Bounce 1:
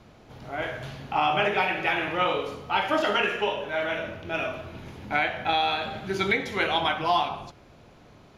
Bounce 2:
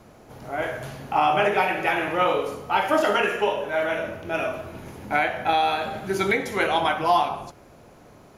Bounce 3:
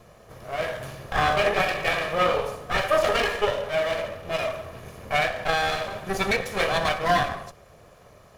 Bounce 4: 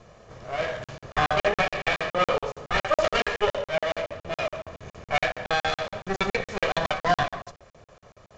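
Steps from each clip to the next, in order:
EQ curve 100 Hz 0 dB, 540 Hz +5 dB, 1800 Hz +2 dB, 3600 Hz -3 dB, 9900 Hz +12 dB
minimum comb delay 1.7 ms
crackling interface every 0.14 s, samples 2048, zero, from 0.84; µ-law 128 kbps 16000 Hz

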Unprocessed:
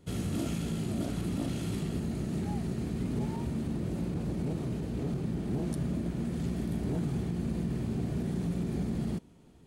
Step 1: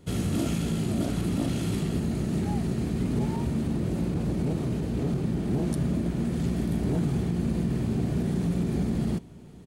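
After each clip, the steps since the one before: echo 1.197 s -22 dB; gain +5.5 dB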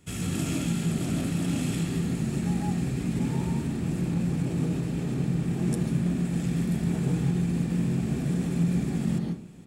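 reverb RT60 0.40 s, pre-delay 0.135 s, DRR 3.5 dB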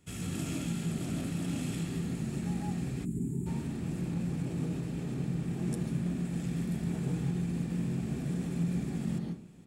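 spectral gain 3.05–3.47, 450–6700 Hz -21 dB; gain -6.5 dB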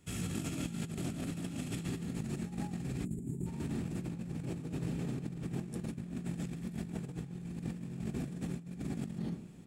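negative-ratio compressor -36 dBFS, ratio -0.5; gain -2 dB

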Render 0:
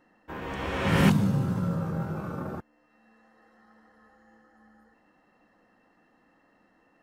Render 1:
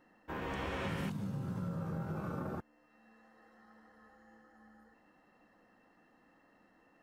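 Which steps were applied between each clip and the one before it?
compressor 16:1, threshold -32 dBFS, peak gain reduction 17.5 dB; gain -2.5 dB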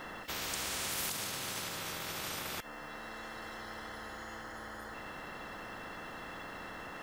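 small resonant body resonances 1300/3400 Hz, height 17 dB, ringing for 45 ms; spectral compressor 10:1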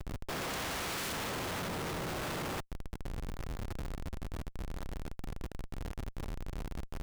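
Schmitt trigger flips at -37 dBFS; gain +5 dB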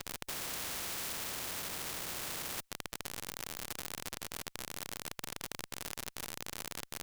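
spectral compressor 4:1; gain +11 dB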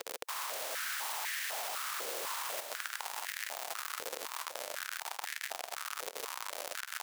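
regenerating reverse delay 0.36 s, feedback 67%, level -7 dB; stepped high-pass 4 Hz 480–1800 Hz; gain -1 dB

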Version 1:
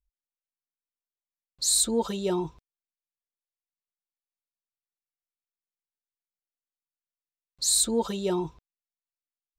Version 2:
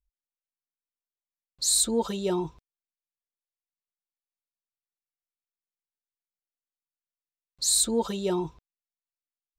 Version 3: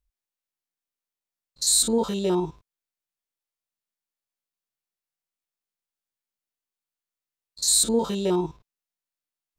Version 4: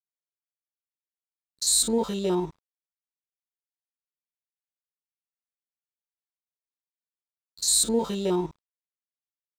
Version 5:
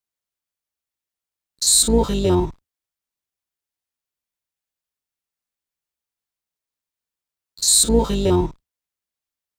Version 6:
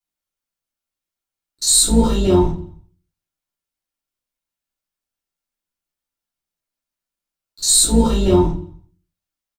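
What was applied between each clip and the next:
nothing audible
stepped spectrum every 50 ms; gain +4.5 dB
crossover distortion -48.5 dBFS; gain -1.5 dB
octaver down 2 oct, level -1 dB; gain +7 dB
feedback echo 85 ms, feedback 56%, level -23.5 dB; shoebox room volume 160 m³, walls furnished, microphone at 3.2 m; gain -5 dB

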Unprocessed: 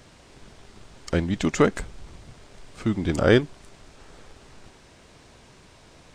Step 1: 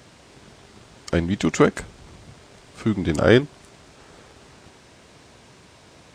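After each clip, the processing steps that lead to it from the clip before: HPF 72 Hz; gain +2.5 dB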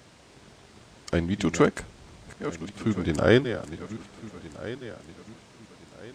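regenerating reverse delay 0.683 s, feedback 58%, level -12 dB; gain -4 dB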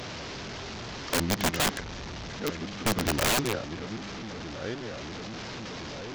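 delta modulation 32 kbps, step -32 dBFS; wrapped overs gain 19 dB

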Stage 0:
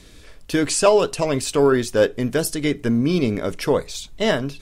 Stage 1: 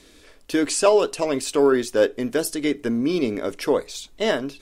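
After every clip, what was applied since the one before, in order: resonant low shelf 210 Hz -8 dB, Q 1.5; gain -2.5 dB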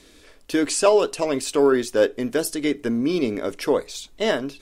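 nothing audible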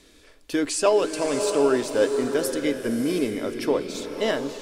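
bloom reverb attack 0.7 s, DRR 5.5 dB; gain -3 dB

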